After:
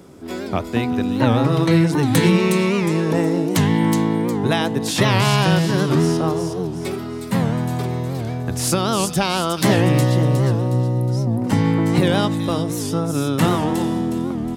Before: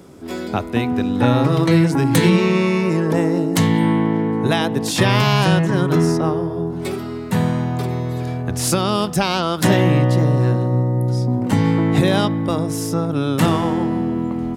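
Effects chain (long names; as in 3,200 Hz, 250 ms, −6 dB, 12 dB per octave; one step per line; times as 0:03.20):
on a send: delay with a high-pass on its return 363 ms, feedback 40%, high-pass 4,100 Hz, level −3.5 dB
on the sum: wow of a warped record 78 rpm, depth 160 cents
level −1 dB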